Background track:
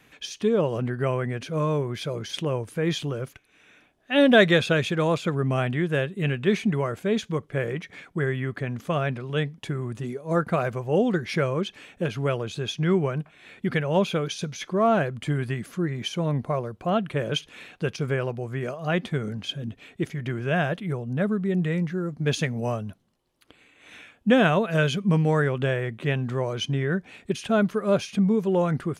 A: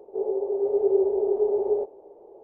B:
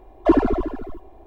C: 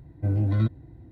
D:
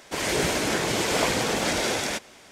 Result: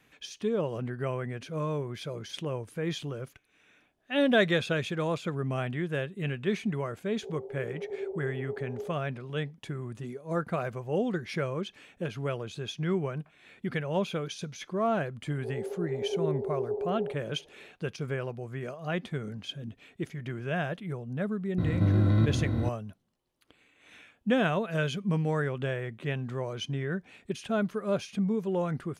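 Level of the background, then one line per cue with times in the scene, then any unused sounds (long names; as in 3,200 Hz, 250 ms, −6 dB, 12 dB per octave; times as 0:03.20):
background track −7 dB
0:07.08: mix in A −15 dB
0:15.29: mix in A −9.5 dB
0:21.58: mix in C −2.5 dB + compressor on every frequency bin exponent 0.2
not used: B, D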